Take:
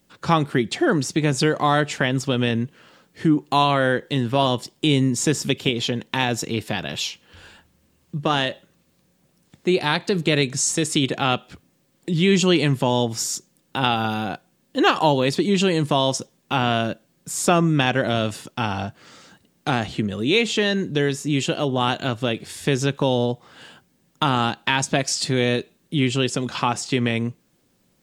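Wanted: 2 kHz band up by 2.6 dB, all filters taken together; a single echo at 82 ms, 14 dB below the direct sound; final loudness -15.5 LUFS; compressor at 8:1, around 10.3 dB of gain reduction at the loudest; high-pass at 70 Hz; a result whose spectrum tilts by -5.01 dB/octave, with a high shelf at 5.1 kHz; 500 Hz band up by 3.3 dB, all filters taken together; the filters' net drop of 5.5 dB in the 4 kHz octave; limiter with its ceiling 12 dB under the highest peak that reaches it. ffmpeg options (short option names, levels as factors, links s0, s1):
-af "highpass=70,equalizer=f=500:t=o:g=4,equalizer=f=2000:t=o:g=6.5,equalizer=f=4000:t=o:g=-7.5,highshelf=f=5100:g=-8,acompressor=threshold=0.0794:ratio=8,alimiter=limit=0.133:level=0:latency=1,aecho=1:1:82:0.2,volume=5.31"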